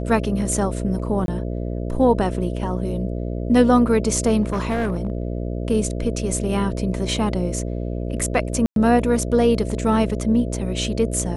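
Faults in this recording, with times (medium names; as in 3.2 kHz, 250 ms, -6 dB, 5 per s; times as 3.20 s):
buzz 60 Hz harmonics 11 -26 dBFS
1.26–1.28 s: dropout 22 ms
4.42–5.22 s: clipped -17.5 dBFS
8.66–8.76 s: dropout 102 ms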